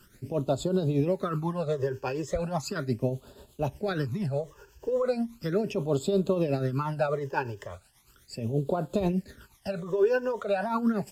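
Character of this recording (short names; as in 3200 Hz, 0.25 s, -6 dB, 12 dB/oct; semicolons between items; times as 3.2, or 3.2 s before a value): a quantiser's noise floor 10-bit, dither triangular; tremolo triangle 8.3 Hz, depth 65%; phasing stages 12, 0.37 Hz, lowest notch 210–2000 Hz; Vorbis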